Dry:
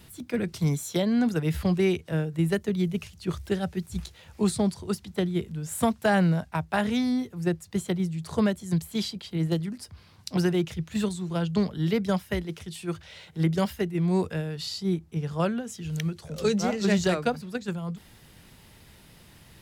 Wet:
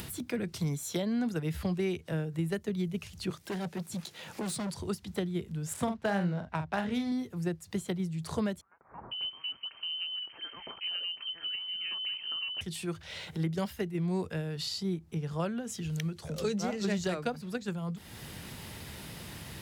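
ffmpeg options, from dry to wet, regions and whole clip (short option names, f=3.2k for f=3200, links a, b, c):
-filter_complex "[0:a]asettb=1/sr,asplit=3[a][b][c];[a]atrim=end=3.304[d];[b]atrim=start=3.3:end=4.74,asetpts=PTS-STARTPTS,afade=t=in:d=0.004:c=qsin,afade=t=out:st=1.436:d=0.004:c=qsin,highpass=f=150:w=0.5412,highpass=f=150:w=1.3066,asoftclip=type=hard:threshold=-31.5dB[e];[c]atrim=start=4.736[f];[d][e]acrossfade=d=0.004:c1=hsin:c2=qsin[g];[g][f]acrossfade=d=0.004:c1=qsin:c2=hsin,asettb=1/sr,asplit=3[h][i][j];[h]atrim=end=5.734[k];[i]atrim=start=5.73:end=7.12,asetpts=PTS-STARTPTS,afade=t=in:d=0.004:c=qsin,afade=t=out:st=1.386:d=0.004:c=qsin,adynamicsmooth=sensitivity=6.5:basefreq=3.2k,asplit=2[l][m];[m]adelay=45,volume=-8dB[n];[l][n]amix=inputs=2:normalize=0,atrim=end_sample=61299[o];[j]atrim=start=7.116[p];[k][o]acrossfade=d=0.004:c1=hsin:c2=qsin[q];[q][p]acrossfade=d=0.004:c1=qsin:c2=hsin,asettb=1/sr,asplit=3[r][s][t];[r]atrim=end=8.614[u];[s]atrim=start=8.61:end=12.61,asetpts=PTS-STARTPTS,afade=t=in:d=0.004:c=qsin,afade=t=out:st=3.996:d=0.004:c=qsin,acompressor=threshold=-39dB:ratio=2:attack=3.2:release=140:knee=1:detection=peak,acrossover=split=1800[v][w];[v]adelay=500[x];[x][w]amix=inputs=2:normalize=0,atrim=end_sample=176400,lowpass=f=2.7k:t=q:w=0.5098,lowpass=f=2.7k:t=q:w=0.6013,lowpass=f=2.7k:t=q:w=0.9,lowpass=f=2.7k:t=q:w=2.563,afreqshift=-3200[y];[t]atrim=start=12.606[z];[u][y]acrossfade=d=0.004:c1=hsin:c2=qsin[aa];[aa][z]acrossfade=d=0.004:c1=qsin:c2=hsin,acompressor=threshold=-34dB:ratio=2,highpass=60,acompressor=mode=upward:threshold=-34dB:ratio=2.5"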